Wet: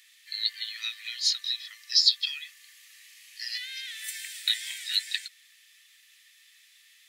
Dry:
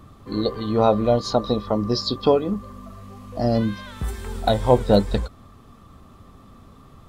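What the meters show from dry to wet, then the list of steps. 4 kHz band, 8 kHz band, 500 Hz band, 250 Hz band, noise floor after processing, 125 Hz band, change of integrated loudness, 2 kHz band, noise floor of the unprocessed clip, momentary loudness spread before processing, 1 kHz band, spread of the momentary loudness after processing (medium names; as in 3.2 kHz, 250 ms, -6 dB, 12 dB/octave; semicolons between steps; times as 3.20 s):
+7.0 dB, +7.5 dB, under -40 dB, under -40 dB, -59 dBFS, under -40 dB, -6.0 dB, +2.5 dB, -49 dBFS, 17 LU, under -35 dB, 16 LU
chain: Chebyshev high-pass 1.8 kHz, order 6; trim +7.5 dB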